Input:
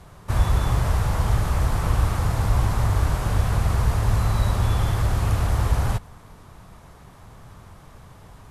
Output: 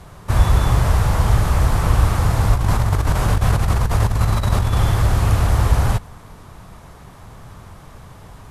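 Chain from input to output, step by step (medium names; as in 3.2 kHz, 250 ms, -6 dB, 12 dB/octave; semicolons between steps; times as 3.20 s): 2.53–4.78 s: compressor with a negative ratio -21 dBFS, ratio -0.5; trim +5.5 dB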